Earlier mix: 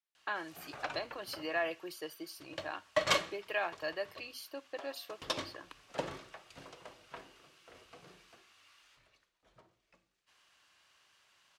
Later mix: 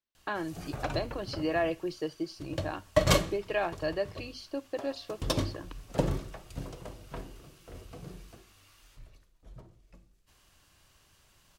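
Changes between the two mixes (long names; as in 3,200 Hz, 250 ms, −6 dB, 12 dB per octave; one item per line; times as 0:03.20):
speech: add low-pass filter 5,700 Hz 24 dB per octave
master: remove resonant band-pass 2,100 Hz, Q 0.59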